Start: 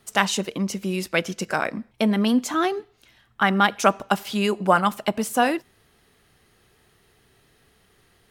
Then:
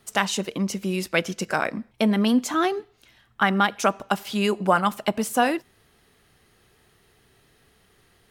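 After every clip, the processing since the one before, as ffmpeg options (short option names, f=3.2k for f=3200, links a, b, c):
-af "alimiter=limit=-7dB:level=0:latency=1:release=362"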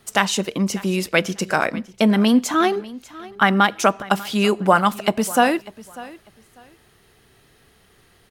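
-af "aecho=1:1:595|1190:0.106|0.0233,volume=4.5dB"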